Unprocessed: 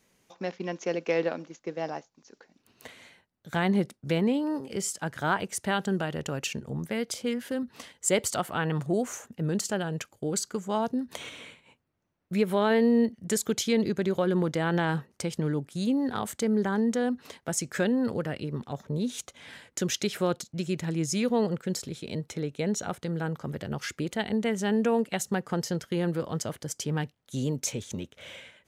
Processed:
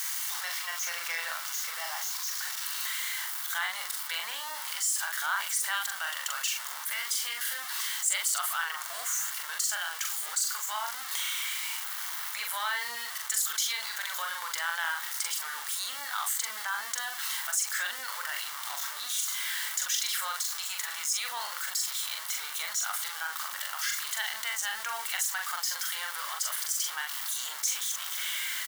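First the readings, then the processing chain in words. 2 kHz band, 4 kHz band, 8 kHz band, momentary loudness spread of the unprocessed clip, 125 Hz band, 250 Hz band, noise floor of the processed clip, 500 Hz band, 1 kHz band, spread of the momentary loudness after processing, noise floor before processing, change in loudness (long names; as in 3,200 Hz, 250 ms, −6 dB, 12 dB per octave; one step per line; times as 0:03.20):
+4.0 dB, +6.5 dB, +6.5 dB, 10 LU, below −40 dB, below −40 dB, −39 dBFS, −24.0 dB, −1.5 dB, 5 LU, −73 dBFS, −1.0 dB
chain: converter with a step at zero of −33.5 dBFS
inverse Chebyshev high-pass filter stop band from 410 Hz, stop band 50 dB
high-shelf EQ 8,700 Hz +10 dB
notch filter 2,500 Hz, Q 7
double-tracking delay 42 ms −4.5 dB
envelope flattener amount 50%
level −6.5 dB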